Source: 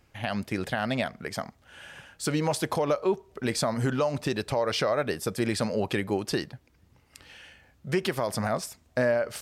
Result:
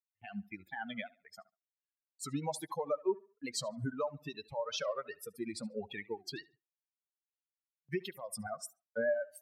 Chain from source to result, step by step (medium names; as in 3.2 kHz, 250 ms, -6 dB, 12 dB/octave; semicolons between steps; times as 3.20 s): expander on every frequency bin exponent 3; 8.10–8.67 s: peaking EQ 8.3 kHz +10 dB 0.47 oct; tape echo 71 ms, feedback 34%, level -20.5 dB, low-pass 3.8 kHz; gate with hold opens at -53 dBFS; high-pass 150 Hz 6 dB/octave; warped record 45 rpm, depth 160 cents; trim -3.5 dB